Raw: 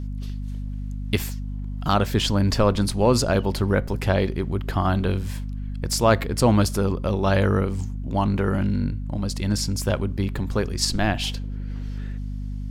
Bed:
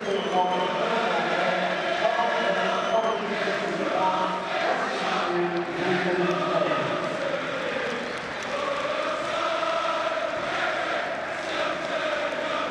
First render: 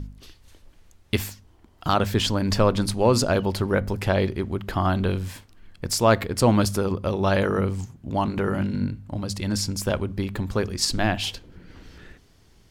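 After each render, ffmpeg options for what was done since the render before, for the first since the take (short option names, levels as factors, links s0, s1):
-af "bandreject=f=50:t=h:w=4,bandreject=f=100:t=h:w=4,bandreject=f=150:t=h:w=4,bandreject=f=200:t=h:w=4,bandreject=f=250:t=h:w=4"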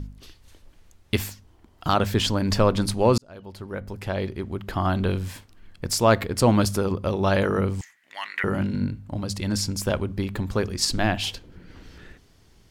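-filter_complex "[0:a]asettb=1/sr,asplit=3[s0][s1][s2];[s0]atrim=end=7.814[s3];[s1]atrim=start=7.81:end=8.44,asetpts=PTS-STARTPTS,afade=t=in:d=0.004:c=qsin,afade=t=out:st=0.626:d=0.004:c=qsin,highpass=f=1900:t=q:w=12[s4];[s2]atrim=start=8.436[s5];[s3][s4]acrossfade=d=0.004:c1=hsin:c2=qsin[s6];[s6][s5]acrossfade=d=0.004:c1=qsin:c2=hsin,asplit=2[s7][s8];[s7]atrim=end=3.18,asetpts=PTS-STARTPTS,afade=t=out:st=3.176:d=0.004:c=hsin[s9];[s8]atrim=start=3.18,asetpts=PTS-STARTPTS,afade=t=in:d=1.93[s10];[s9][s10]concat=n=2:v=0:a=1"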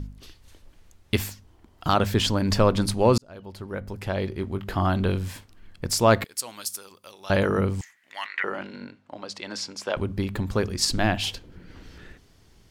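-filter_complex "[0:a]asettb=1/sr,asplit=3[s0][s1][s2];[s0]atrim=end=4.294[s3];[s1]atrim=start=4.29:end=4.86,asetpts=PTS-STARTPTS,afade=t=in:d=0.004:c=qsin,afade=t=out:st=0.566:d=0.004:c=qsin,asplit=2[s4][s5];[s5]adelay=21,volume=0.355[s6];[s4][s6]amix=inputs=2:normalize=0,atrim=end_sample=25137[s7];[s2]atrim=start=4.856[s8];[s3][s7]acrossfade=d=0.004:c1=hsin:c2=qsin[s9];[s9][s8]acrossfade=d=0.004:c1=qsin:c2=hsin,asettb=1/sr,asplit=3[s10][s11][s12];[s10]atrim=end=6.244[s13];[s11]atrim=start=6.24:end=7.3,asetpts=PTS-STARTPTS,afade=t=in:d=0.004:c=qsin,afade=t=out:st=1.056:d=0.004:c=qsin,aderivative[s14];[s12]atrim=start=7.296[s15];[s13][s14]acrossfade=d=0.004:c1=hsin:c2=qsin[s16];[s16][s15]acrossfade=d=0.004:c1=qsin:c2=hsin,asettb=1/sr,asplit=3[s17][s18][s19];[s17]atrim=end=8.264[s20];[s18]atrim=start=8.26:end=9.97,asetpts=PTS-STARTPTS,afade=t=in:d=0.004:c=qsin,afade=t=out:st=1.706:d=0.004:c=qsin,highpass=490,lowpass=4900[s21];[s19]atrim=start=9.966[s22];[s20][s21]acrossfade=d=0.004:c1=hsin:c2=qsin[s23];[s23][s22]acrossfade=d=0.004:c1=qsin:c2=hsin"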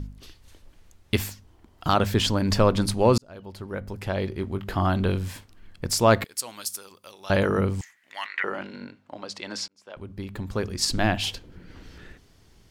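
-filter_complex "[0:a]asplit=2[s0][s1];[s0]atrim=end=9.68,asetpts=PTS-STARTPTS,afade=t=out:st=9.676:d=0.004:c=hsin[s2];[s1]atrim=start=9.68,asetpts=PTS-STARTPTS,afade=t=in:d=1.34[s3];[s2][s3]concat=n=2:v=0:a=1"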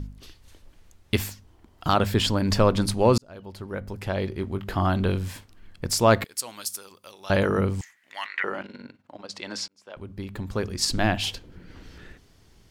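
-filter_complex "[0:a]asettb=1/sr,asplit=3[s0][s1][s2];[s0]atrim=end=1.934[s3];[s1]atrim=start=1.93:end=2.43,asetpts=PTS-STARTPTS,afade=t=in:d=0.004:c=qsin,afade=t=out:st=0.496:d=0.004:c=qsin,bandreject=f=6100:w=12[s4];[s2]atrim=start=2.426[s5];[s3][s4]acrossfade=d=0.004:c1=hsin:c2=qsin[s6];[s6][s5]acrossfade=d=0.004:c1=qsin:c2=hsin,asplit=3[s7][s8][s9];[s7]afade=t=out:st=8.61:d=0.02[s10];[s8]tremolo=f=20:d=0.71,afade=t=in:st=8.61:d=0.02,afade=t=out:st=9.32:d=0.02[s11];[s9]afade=t=in:st=9.32:d=0.02[s12];[s10][s11][s12]amix=inputs=3:normalize=0"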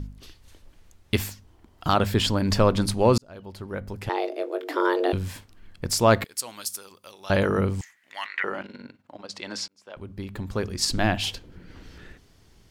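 -filter_complex "[0:a]asettb=1/sr,asplit=3[s0][s1][s2];[s0]atrim=end=4.094[s3];[s1]atrim=start=4.09:end=5.13,asetpts=PTS-STARTPTS,afade=t=in:d=0.004:c=qsin,afade=t=out:st=1.036:d=0.004:c=qsin,afreqshift=260[s4];[s2]atrim=start=5.126[s5];[s3][s4]acrossfade=d=0.004:c1=hsin:c2=qsin[s6];[s6][s5]acrossfade=d=0.004:c1=qsin:c2=hsin"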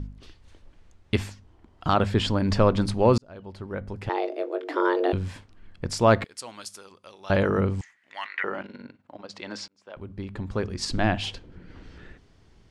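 -af "lowpass=f=10000:w=0.5412,lowpass=f=10000:w=1.3066,highshelf=f=4800:g=-11.5"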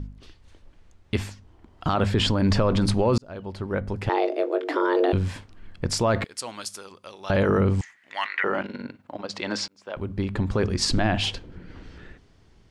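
-af "dynaudnorm=f=280:g=13:m=3.76,alimiter=limit=0.237:level=0:latency=1:release=19"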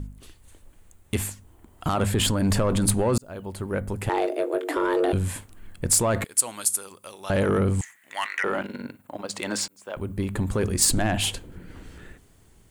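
-af "asoftclip=type=tanh:threshold=0.2,aexciter=amount=11.2:drive=3.2:freq=7500"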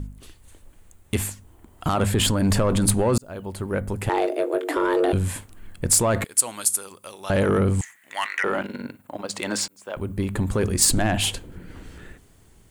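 -af "volume=1.26"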